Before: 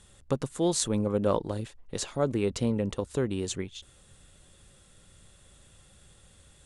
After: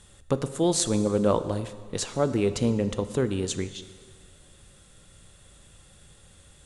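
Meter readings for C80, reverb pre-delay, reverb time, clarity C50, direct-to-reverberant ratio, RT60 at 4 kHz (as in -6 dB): 13.5 dB, 4 ms, 1.7 s, 12.5 dB, 11.0 dB, 1.6 s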